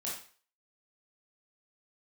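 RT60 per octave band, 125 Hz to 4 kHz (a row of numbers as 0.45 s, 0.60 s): 0.40 s, 0.35 s, 0.40 s, 0.45 s, 0.45 s, 0.40 s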